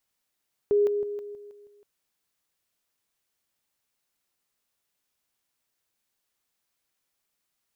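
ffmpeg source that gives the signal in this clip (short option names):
-f lavfi -i "aevalsrc='pow(10,(-18-6*floor(t/0.16))/20)*sin(2*PI*411*t)':d=1.12:s=44100"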